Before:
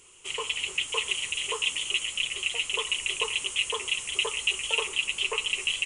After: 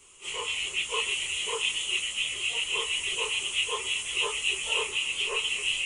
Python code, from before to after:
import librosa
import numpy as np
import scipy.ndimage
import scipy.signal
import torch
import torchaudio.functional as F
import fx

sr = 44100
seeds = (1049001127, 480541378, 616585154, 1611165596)

y = fx.phase_scramble(x, sr, seeds[0], window_ms=100)